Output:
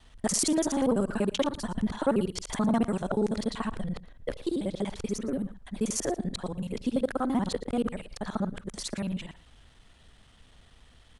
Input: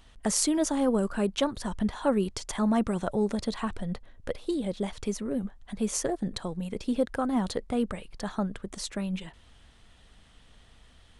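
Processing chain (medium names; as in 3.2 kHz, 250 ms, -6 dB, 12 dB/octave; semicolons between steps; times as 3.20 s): time reversed locally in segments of 48 ms; on a send: delay 114 ms -19 dB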